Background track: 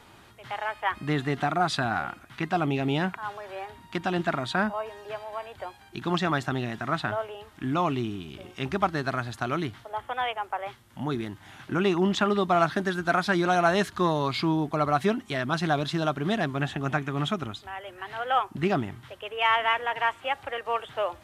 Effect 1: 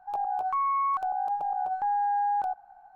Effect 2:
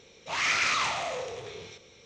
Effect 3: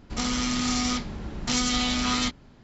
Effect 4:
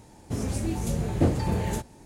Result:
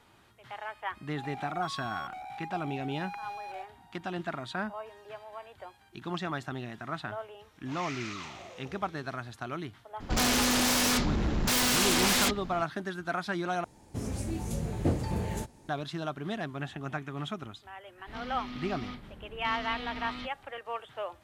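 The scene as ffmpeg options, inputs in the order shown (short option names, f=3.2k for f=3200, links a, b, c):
-filter_complex "[3:a]asplit=2[a][b];[0:a]volume=-8.5dB[c];[1:a]asoftclip=type=hard:threshold=-31.5dB[d];[a]aeval=exprs='0.299*sin(PI/2*7.08*val(0)/0.299)':c=same[e];[b]lowpass=f=3.7k:w=0.5412,lowpass=f=3.7k:w=1.3066[f];[c]asplit=2[g][h];[g]atrim=end=13.644[i];[4:a]atrim=end=2.05,asetpts=PTS-STARTPTS,volume=-5.5dB[j];[h]atrim=start=15.686[k];[d]atrim=end=2.95,asetpts=PTS-STARTPTS,volume=-9dB,afade=t=in:d=0.004:c=hsin,afade=t=out:st=2.946:d=0.004:c=hsin,adelay=1100[l];[2:a]atrim=end=2.05,asetpts=PTS-STARTPTS,volume=-15dB,afade=t=in:d=0.004:c=hsin,afade=t=out:st=2.046:d=0.004:c=hsin,adelay=7390[m];[e]atrim=end=2.63,asetpts=PTS-STARTPTS,volume=-12.5dB,afade=t=in:d=0.004:c=hsin,afade=t=out:st=2.626:d=0.004:c=hsin,adelay=10000[n];[f]atrim=end=2.63,asetpts=PTS-STARTPTS,volume=-13.5dB,afade=t=in:d=0.004:c=hsin,afade=t=out:st=2.626:d=0.004:c=hsin,adelay=17970[o];[i][j]acrossfade=d=0.004:c1=hsin:c2=hsin[p];[p][k]acrossfade=d=0.004:c1=hsin:c2=hsin[q];[q][l][m][n][o]amix=inputs=5:normalize=0"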